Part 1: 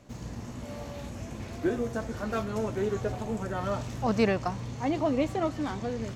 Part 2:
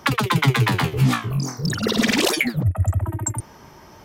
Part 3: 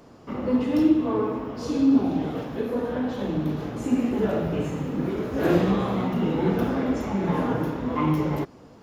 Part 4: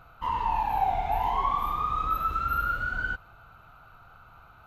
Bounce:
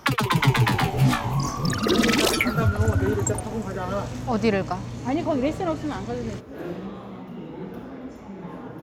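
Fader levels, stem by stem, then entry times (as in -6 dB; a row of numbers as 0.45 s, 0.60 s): +3.0 dB, -2.0 dB, -12.5 dB, -6.5 dB; 0.25 s, 0.00 s, 1.15 s, 0.00 s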